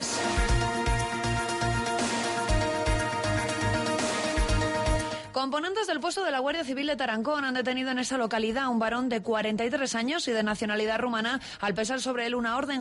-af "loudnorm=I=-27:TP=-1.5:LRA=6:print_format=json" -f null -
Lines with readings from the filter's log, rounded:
"input_i" : "-28.2",
"input_tp" : "-14.3",
"input_lra" : "1.0",
"input_thresh" : "-38.2",